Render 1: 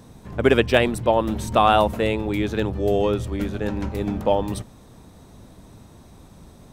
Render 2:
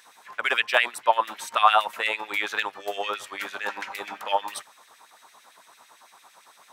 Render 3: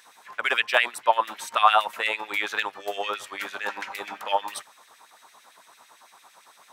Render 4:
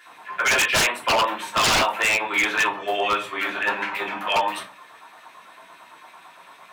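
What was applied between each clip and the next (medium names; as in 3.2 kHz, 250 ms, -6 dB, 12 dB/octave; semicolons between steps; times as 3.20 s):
gain riding within 3 dB 0.5 s; LFO high-pass sine 8.9 Hz 900–2300 Hz
no audible change
resonant high shelf 3.8 kHz -7 dB, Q 1.5; simulated room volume 140 m³, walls furnished, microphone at 3.1 m; wavefolder -13.5 dBFS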